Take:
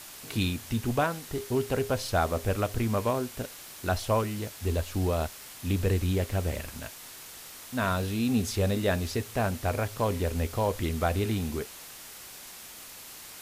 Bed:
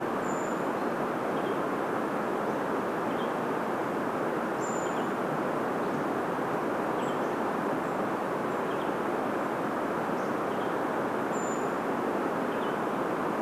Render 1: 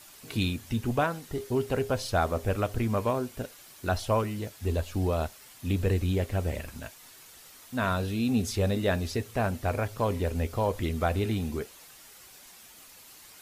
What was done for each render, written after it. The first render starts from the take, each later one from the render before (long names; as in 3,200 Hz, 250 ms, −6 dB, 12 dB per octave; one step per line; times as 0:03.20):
broadband denoise 8 dB, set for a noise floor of −46 dBFS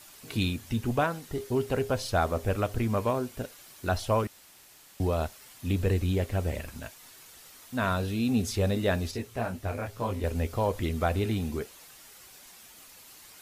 0:04.27–0:05.00: fill with room tone
0:09.11–0:10.24: micro pitch shift up and down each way 32 cents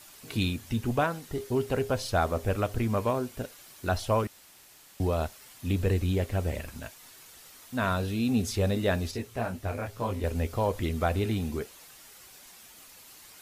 no processing that can be heard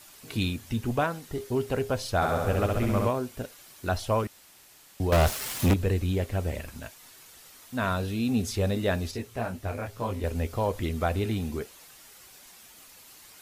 0:02.15–0:03.08: flutter between parallel walls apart 11.5 metres, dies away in 1.3 s
0:05.12–0:05.74: leveller curve on the samples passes 5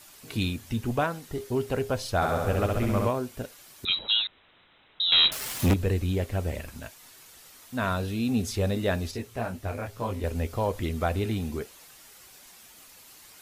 0:03.85–0:05.32: voice inversion scrambler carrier 3,900 Hz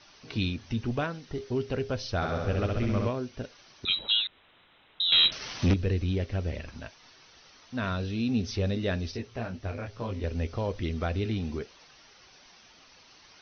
Chebyshev low-pass filter 6,100 Hz, order 10
dynamic equaliser 880 Hz, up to −8 dB, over −43 dBFS, Q 1.1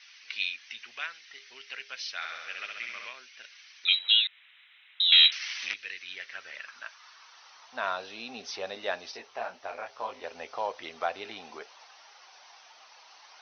high-pass filter sweep 2,100 Hz → 800 Hz, 0:05.87–0:07.81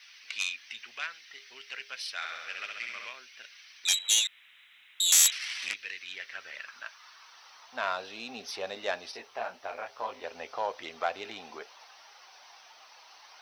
phase distortion by the signal itself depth 0.12 ms
bit-depth reduction 12 bits, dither none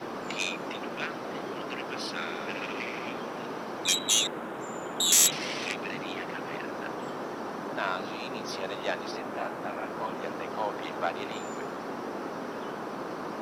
mix in bed −6.5 dB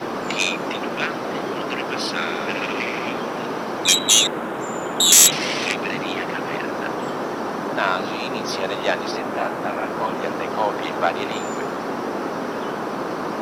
level +10 dB
brickwall limiter −1 dBFS, peak gain reduction 1.5 dB